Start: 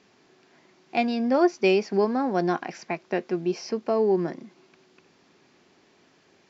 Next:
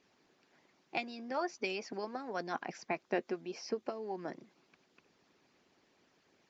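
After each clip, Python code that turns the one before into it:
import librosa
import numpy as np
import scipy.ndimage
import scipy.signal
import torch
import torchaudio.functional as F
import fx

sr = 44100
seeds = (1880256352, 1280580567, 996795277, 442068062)

y = fx.hpss(x, sr, part='harmonic', gain_db=-15)
y = y * 10.0 ** (-5.5 / 20.0)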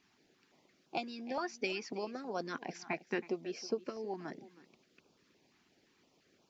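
y = x + 10.0 ** (-17.5 / 20.0) * np.pad(x, (int(321 * sr / 1000.0), 0))[:len(x)]
y = fx.filter_held_notch(y, sr, hz=5.8, low_hz=530.0, high_hz=1900.0)
y = y * 10.0 ** (1.5 / 20.0)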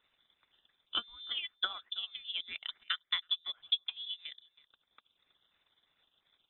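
y = fx.transient(x, sr, attack_db=8, sustain_db=-11)
y = fx.freq_invert(y, sr, carrier_hz=3800)
y = y * 10.0 ** (-3.5 / 20.0)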